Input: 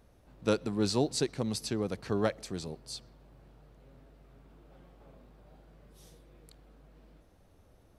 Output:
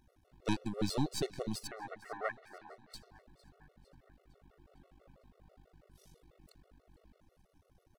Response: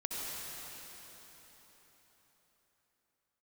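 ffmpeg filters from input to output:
-filter_complex "[0:a]aeval=exprs='if(lt(val(0),0),0.251*val(0),val(0))':c=same,asettb=1/sr,asplit=3[s0][s1][s2];[s0]atrim=end=1.674[s3];[s1]atrim=start=1.67:end=2.94,asetpts=PTS-STARTPTS,afade=t=in:d=0.004:c=qsin,afade=t=out:st=1.266:d=0.004:c=qsin,highpass=f=450:w=0.5412,highpass=f=450:w=1.3066,equalizer=f=510:t=q:w=4:g=-9,equalizer=f=810:t=q:w=4:g=6,equalizer=f=1700:t=q:w=4:g=9,lowpass=f=2200:w=0.5412,lowpass=f=2200:w=1.3066[s4];[s2]atrim=start=2.936[s5];[s3][s4]acrossfade=d=0.004:c1=hsin:c2=qsin[s6];[s6][s5]acrossfade=d=0.004:c1=qsin:c2=hsin,aecho=1:1:455|910|1365|1820|2275:0.0891|0.0517|0.03|0.0174|0.0101,afftfilt=real='re*gt(sin(2*PI*6.1*pts/sr)*(1-2*mod(floor(b*sr/1024/370),2)),0)':imag='im*gt(sin(2*PI*6.1*pts/sr)*(1-2*mod(floor(b*sr/1024/370),2)),0)':win_size=1024:overlap=0.75"

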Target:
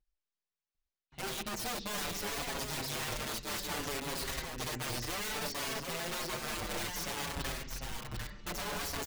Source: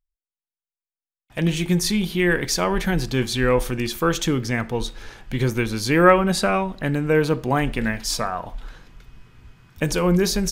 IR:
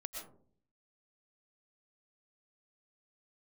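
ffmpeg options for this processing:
-filter_complex "[0:a]areverse,acompressor=threshold=0.02:ratio=5,areverse,asetrate=51156,aresample=44100,lowpass=f=6300:w=0.5412,lowpass=f=6300:w=1.3066,aeval=exprs='(mod(47.3*val(0)+1,2)-1)/47.3':c=same,asplit=2[s0][s1];[s1]aecho=0:1:748:0.562[s2];[s0][s2]amix=inputs=2:normalize=0,asplit=2[s3][s4];[s4]adelay=6.1,afreqshift=-0.61[s5];[s3][s5]amix=inputs=2:normalize=1,volume=1.5"

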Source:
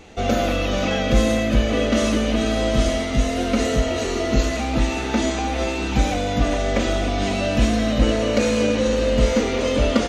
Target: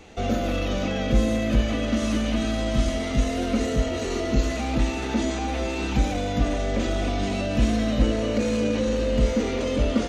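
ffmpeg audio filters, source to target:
-filter_complex "[0:a]asettb=1/sr,asplit=3[s0][s1][s2];[s0]atrim=end=1.614[s3];[s1]atrim=start=1.61:end=2.95,asetpts=PTS-STARTPTS,afade=t=in:d=0.004:c=qsin,afade=t=out:st=1.336:d=0.004:c=qsin,equalizer=f=440:t=o:w=0.5:g=-8.5[s4];[s2]atrim=start=2.946[s5];[s3][s4]acrossfade=d=0.004:c1=hsin:c2=qsin[s6];[s6][s5]acrossfade=d=0.004:c1=qsin:c2=hsin,acrossover=split=440[s7][s8];[s8]alimiter=limit=0.0794:level=0:latency=1:release=18[s9];[s7][s9]amix=inputs=2:normalize=0,volume=0.75"

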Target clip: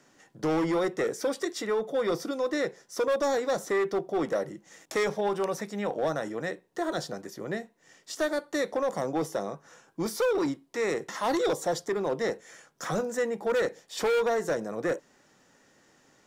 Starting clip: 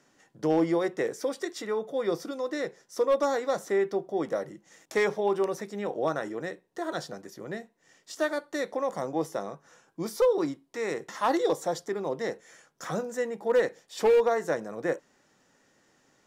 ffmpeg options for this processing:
-filter_complex "[0:a]asettb=1/sr,asplit=3[s0][s1][s2];[s0]atrim=end=5.034[s3];[s1]atrim=start=5.03:end=6.49,asetpts=PTS-STARTPTS,afade=t=in:d=0.004:c=qsin,afade=t=out:st=1.456:d=0.004:c=qsin,equalizer=f=370:t=o:w=0.47:g=-6.5[s4];[s2]atrim=start=6.486[s5];[s3][s4]acrossfade=d=0.004:c1=hsin:c2=qsin[s6];[s6][s5]acrossfade=d=0.004:c1=qsin:c2=hsin,acrossover=split=740|3100[s7][s8][s9];[s7]asoftclip=type=hard:threshold=0.0376[s10];[s8]alimiter=level_in=2.24:limit=0.0631:level=0:latency=1:release=229,volume=0.447[s11];[s10][s11][s9]amix=inputs=3:normalize=0,volume=1.5"

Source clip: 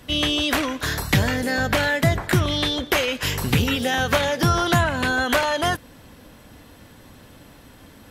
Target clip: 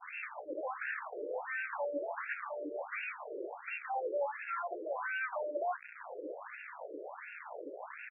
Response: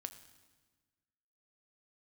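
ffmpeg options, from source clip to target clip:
-filter_complex "[0:a]asplit=2[s0][s1];[s1]acompressor=threshold=0.0141:ratio=6,volume=0.841[s2];[s0][s2]amix=inputs=2:normalize=0,alimiter=limit=0.299:level=0:latency=1:release=462,aeval=exprs='(tanh(70.8*val(0)+0.3)-tanh(0.3))/70.8':c=same,aresample=16000,acrusher=bits=6:mix=0:aa=0.000001,aresample=44100,highshelf=f=5200:g=-9.5,asplit=2[s3][s4];[s4]adelay=14,volume=0.224[s5];[s3][s5]amix=inputs=2:normalize=0,adynamicequalizer=threshold=0.00224:dfrequency=1400:dqfactor=1.1:tfrequency=1400:tqfactor=1.1:attack=5:release=100:ratio=0.375:range=2:mode=cutabove:tftype=bell,afftfilt=real='re*between(b*sr/1024,420*pow(2000/420,0.5+0.5*sin(2*PI*1.4*pts/sr))/1.41,420*pow(2000/420,0.5+0.5*sin(2*PI*1.4*pts/sr))*1.41)':imag='im*between(b*sr/1024,420*pow(2000/420,0.5+0.5*sin(2*PI*1.4*pts/sr))/1.41,420*pow(2000/420,0.5+0.5*sin(2*PI*1.4*pts/sr))*1.41)':win_size=1024:overlap=0.75,volume=2.51"

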